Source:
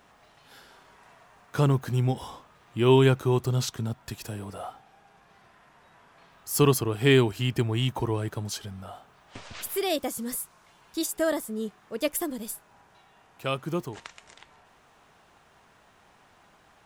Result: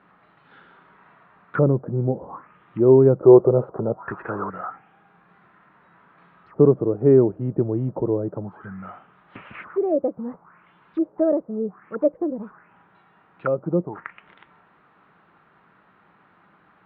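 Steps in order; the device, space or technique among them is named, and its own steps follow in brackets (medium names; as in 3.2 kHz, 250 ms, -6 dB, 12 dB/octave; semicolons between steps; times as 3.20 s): envelope filter bass rig (touch-sensitive low-pass 560–4500 Hz down, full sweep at -27.5 dBFS; cabinet simulation 72–2100 Hz, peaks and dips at 83 Hz -8 dB, 180 Hz +9 dB, 320 Hz +5 dB, 690 Hz -4 dB, 1.3 kHz +6 dB); 3.23–4.50 s: high-order bell 720 Hz +11 dB 2.3 oct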